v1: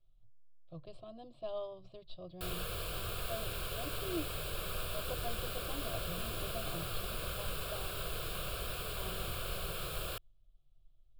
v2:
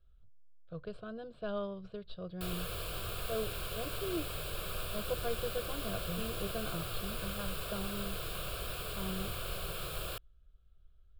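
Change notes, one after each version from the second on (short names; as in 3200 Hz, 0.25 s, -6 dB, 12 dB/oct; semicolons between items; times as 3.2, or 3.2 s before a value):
speech: remove fixed phaser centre 300 Hz, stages 8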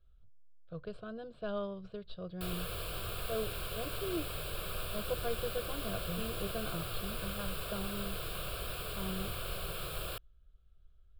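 background: add bell 6300 Hz -7.5 dB 0.3 oct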